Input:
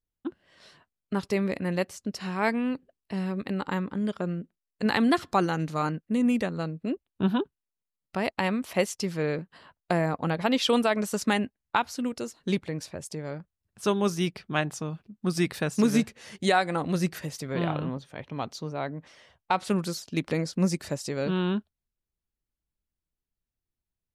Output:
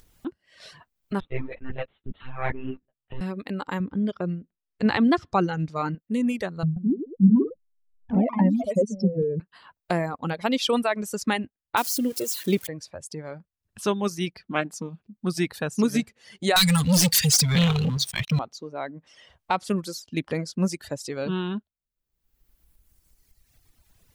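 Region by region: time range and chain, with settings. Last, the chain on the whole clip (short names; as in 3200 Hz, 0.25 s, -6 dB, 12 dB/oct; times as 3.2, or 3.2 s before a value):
1.2–3.21 monotone LPC vocoder at 8 kHz 130 Hz + ensemble effect
3.8–5.95 LPF 4800 Hz + low shelf 220 Hz +7.5 dB
6.63–9.4 spectral contrast raised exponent 2.6 + RIAA curve playback + echoes that change speed 0.133 s, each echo +2 st, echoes 2, each echo -6 dB
11.77–12.67 switching spikes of -22.5 dBFS + bell 340 Hz +6.5 dB 1.2 oct
14.47–14.99 resonant low shelf 150 Hz -7.5 dB, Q 3 + Doppler distortion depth 0.13 ms
16.56–18.39 EQ curve 190 Hz 0 dB, 340 Hz -30 dB, 580 Hz -25 dB, 1300 Hz -10 dB, 4500 Hz +12 dB + sample leveller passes 5
whole clip: reverb removal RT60 1.8 s; upward compressor, threshold -36 dBFS; gain +1 dB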